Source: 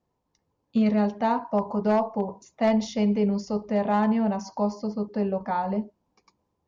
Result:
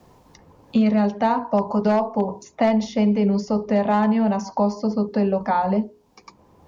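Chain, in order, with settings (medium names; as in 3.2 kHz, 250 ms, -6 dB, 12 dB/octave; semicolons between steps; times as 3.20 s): hum notches 60/120/180/240/300/360/420/480 Hz; wow and flutter 16 cents; three bands compressed up and down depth 70%; trim +4.5 dB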